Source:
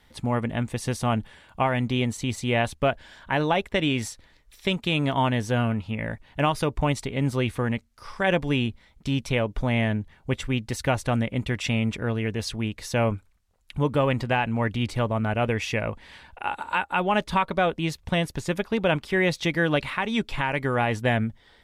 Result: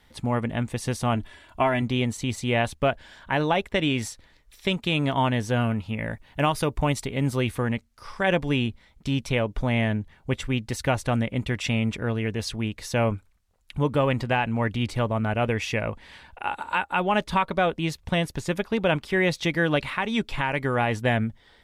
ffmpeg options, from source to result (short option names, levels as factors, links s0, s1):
-filter_complex "[0:a]asettb=1/sr,asplit=3[s0][s1][s2];[s0]atrim=end=1.154[s3];[s1]atrim=start=1.15:end=1.82,asetpts=PTS-STARTPTS,afade=t=in:d=0.004:c=qsin,afade=t=out:st=0.666:d=0.004:c=qsin,aecho=1:1:3:0.65,atrim=end_sample=29547[s4];[s2]atrim=start=1.816[s5];[s3][s4]acrossfade=d=0.004:c1=hsin:c2=qsin[s6];[s6][s5]acrossfade=d=0.004:c1=qsin:c2=hsin,asettb=1/sr,asplit=3[s7][s8][s9];[s7]atrim=end=5.614[s10];[s8]atrim=start=5.61:end=7.64,asetpts=PTS-STARTPTS,afade=t=in:d=0.004:c=qsin,afade=t=out:st=2.026:d=0.004:c=qsin,highshelf=f=11000:g=9[s11];[s9]atrim=start=7.636[s12];[s10][s11]acrossfade=d=0.004:c1=hsin:c2=qsin[s13];[s13][s12]acrossfade=d=0.004:c1=qsin:c2=hsin"